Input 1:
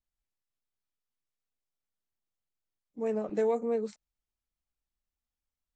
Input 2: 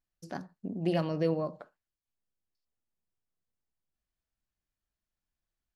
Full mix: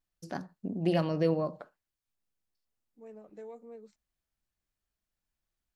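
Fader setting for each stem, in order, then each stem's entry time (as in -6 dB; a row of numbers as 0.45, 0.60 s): -18.0, +1.5 dB; 0.00, 0.00 s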